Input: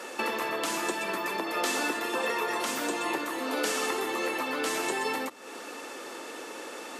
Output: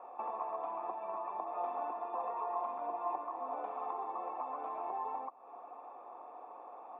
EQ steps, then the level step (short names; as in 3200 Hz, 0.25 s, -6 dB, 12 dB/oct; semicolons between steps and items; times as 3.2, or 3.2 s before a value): vocal tract filter a; +5.0 dB